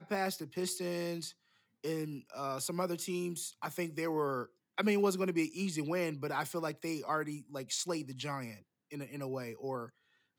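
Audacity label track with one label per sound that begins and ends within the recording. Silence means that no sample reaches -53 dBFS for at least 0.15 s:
1.840000	4.460000	sound
4.780000	8.600000	sound
8.910000	9.900000	sound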